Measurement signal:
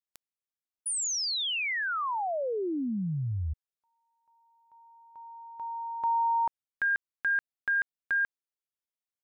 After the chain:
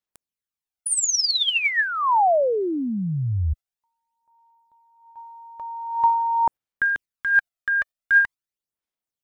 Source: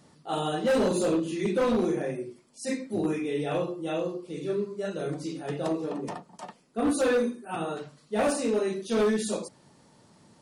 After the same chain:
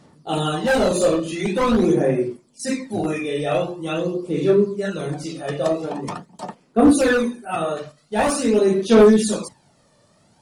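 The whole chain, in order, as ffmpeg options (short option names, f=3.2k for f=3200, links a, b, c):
-af "agate=range=-7dB:threshold=-49dB:ratio=16:release=152:detection=peak,aphaser=in_gain=1:out_gain=1:delay=1.7:decay=0.55:speed=0.45:type=sinusoidal,volume=7dB"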